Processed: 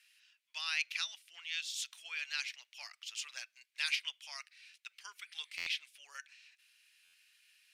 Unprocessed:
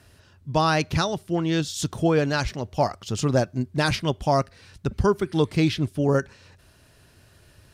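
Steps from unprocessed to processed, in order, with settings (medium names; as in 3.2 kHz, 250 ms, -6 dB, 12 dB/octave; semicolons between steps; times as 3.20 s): ladder high-pass 2.1 kHz, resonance 55%; buffer glitch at 5.57/7.04 s, samples 512, times 7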